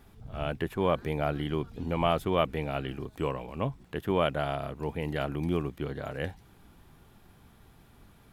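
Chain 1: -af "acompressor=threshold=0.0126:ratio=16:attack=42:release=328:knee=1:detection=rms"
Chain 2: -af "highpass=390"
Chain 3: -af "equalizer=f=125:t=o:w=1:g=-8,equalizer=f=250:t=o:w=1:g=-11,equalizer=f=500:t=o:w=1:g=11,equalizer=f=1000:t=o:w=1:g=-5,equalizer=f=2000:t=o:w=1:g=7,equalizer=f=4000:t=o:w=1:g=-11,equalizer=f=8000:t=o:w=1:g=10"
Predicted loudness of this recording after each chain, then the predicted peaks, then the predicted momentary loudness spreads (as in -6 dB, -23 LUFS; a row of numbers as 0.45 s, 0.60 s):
-43.5 LUFS, -34.0 LUFS, -29.0 LUFS; -25.0 dBFS, -11.5 dBFS, -9.5 dBFS; 16 LU, 11 LU, 10 LU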